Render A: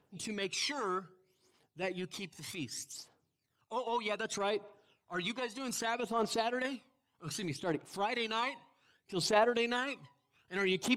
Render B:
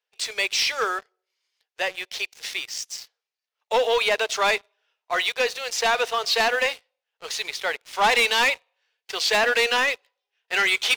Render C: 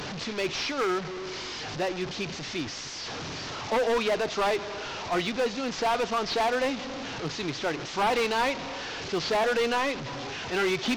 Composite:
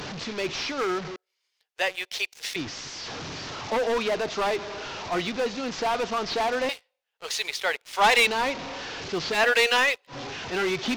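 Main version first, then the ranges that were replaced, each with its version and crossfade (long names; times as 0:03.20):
C
0:01.16–0:02.56: punch in from B
0:06.69–0:08.27: punch in from B
0:09.36–0:10.12: punch in from B, crossfade 0.10 s
not used: A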